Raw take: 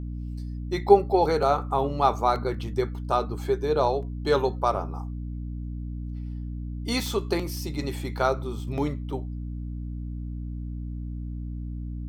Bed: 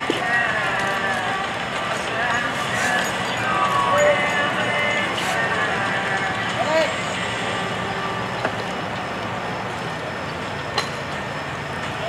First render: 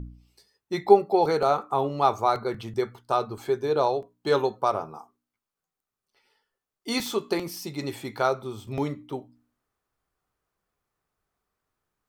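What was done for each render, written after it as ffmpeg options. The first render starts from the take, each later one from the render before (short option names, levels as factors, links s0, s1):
-af "bandreject=f=60:t=h:w=4,bandreject=f=120:t=h:w=4,bandreject=f=180:t=h:w=4,bandreject=f=240:t=h:w=4,bandreject=f=300:t=h:w=4"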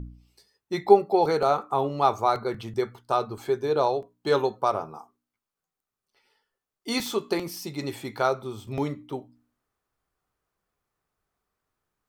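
-af anull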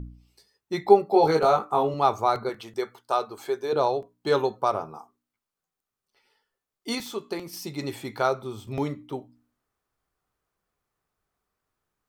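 -filter_complex "[0:a]asettb=1/sr,asplit=3[s0][s1][s2];[s0]atrim=end=1.114[s3];[s1]atrim=start=1.11:end=1.94,asetpts=PTS-STARTPTS,afade=t=in:d=0.004:c=qsin,afade=t=out:st=0.826:d=0.004:c=qsin,asplit=2[s4][s5];[s5]adelay=19,volume=0.794[s6];[s4][s6]amix=inputs=2:normalize=0,atrim=end_sample=36603[s7];[s2]atrim=start=1.936[s8];[s3][s7]acrossfade=d=0.004:c1=hsin:c2=qsin[s9];[s9][s8]acrossfade=d=0.004:c1=qsin:c2=hsin,asettb=1/sr,asplit=3[s10][s11][s12];[s10]atrim=end=2.494[s13];[s11]atrim=start=2.49:end=3.73,asetpts=PTS-STARTPTS,afade=t=in:d=0.004:c=qsin,afade=t=out:st=1.236:d=0.004:c=qsin,bass=f=250:g=-15,treble=f=4000:g=2[s14];[s12]atrim=start=3.726[s15];[s13][s14]acrossfade=d=0.004:c1=hsin:c2=qsin[s16];[s16][s15]acrossfade=d=0.004:c1=qsin:c2=hsin,asplit=3[s17][s18][s19];[s17]atrim=end=6.952[s20];[s18]atrim=start=6.948:end=7.532,asetpts=PTS-STARTPTS,volume=0.531[s21];[s19]atrim=start=7.528[s22];[s20][s21]acrossfade=d=0.004:c1=hsin:c2=hsin[s23];[s23][s22]acrossfade=d=0.004:c1=hsin:c2=hsin"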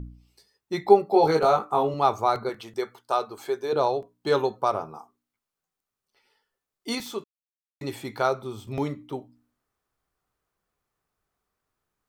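-filter_complex "[0:a]asplit=3[s0][s1][s2];[s0]atrim=end=7.24,asetpts=PTS-STARTPTS,afade=t=out:st=7.236:d=0.004:c=hsin[s3];[s1]atrim=start=7.24:end=7.81,asetpts=PTS-STARTPTS,volume=0[s4];[s2]atrim=start=7.81,asetpts=PTS-STARTPTS,afade=t=in:d=0.004:c=hsin[s5];[s3][s4][s5]concat=n=3:v=0:a=1"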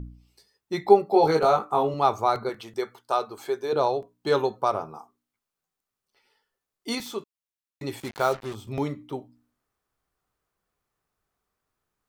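-filter_complex "[0:a]asettb=1/sr,asplit=3[s0][s1][s2];[s0]atrim=end=8.004[s3];[s1]atrim=start=8:end=8.55,asetpts=PTS-STARTPTS,afade=t=in:d=0.004:c=qsin,afade=t=out:st=0.546:d=0.004:c=qsin,acrusher=bits=5:mix=0:aa=0.5[s4];[s2]atrim=start=8.546[s5];[s3][s4]acrossfade=d=0.004:c1=hsin:c2=qsin[s6];[s6][s5]acrossfade=d=0.004:c1=qsin:c2=hsin"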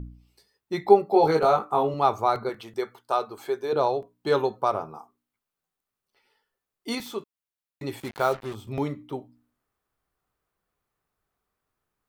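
-af "equalizer=f=6200:t=o:w=1.2:g=-4"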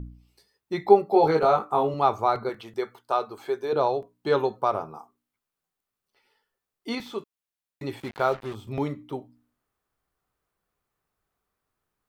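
-filter_complex "[0:a]acrossover=split=4800[s0][s1];[s1]acompressor=threshold=0.00158:ratio=4:attack=1:release=60[s2];[s0][s2]amix=inputs=2:normalize=0"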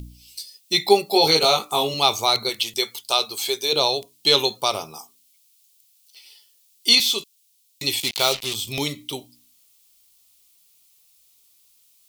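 -af "aexciter=amount=9.4:drive=9.3:freq=2500"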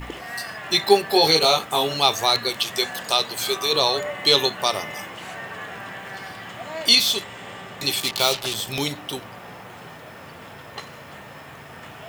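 -filter_complex "[1:a]volume=0.211[s0];[0:a][s0]amix=inputs=2:normalize=0"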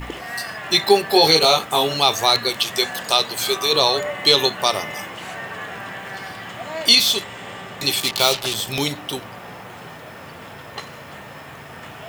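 -af "volume=1.41,alimiter=limit=0.794:level=0:latency=1"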